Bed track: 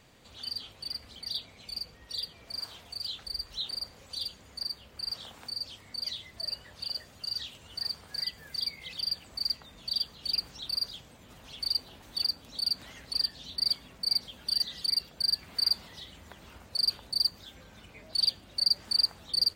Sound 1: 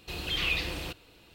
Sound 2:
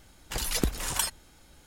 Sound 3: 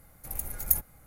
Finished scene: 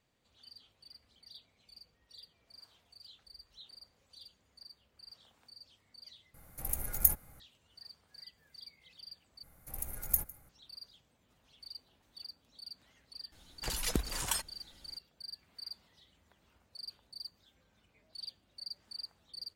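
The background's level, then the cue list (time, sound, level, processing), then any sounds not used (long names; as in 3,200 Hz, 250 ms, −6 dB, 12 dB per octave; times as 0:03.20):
bed track −18.5 dB
0:06.34: overwrite with 3 −1 dB
0:09.43: overwrite with 3 −5.5 dB + single-tap delay 154 ms −21.5 dB
0:13.32: mix in 2 −5.5 dB
not used: 1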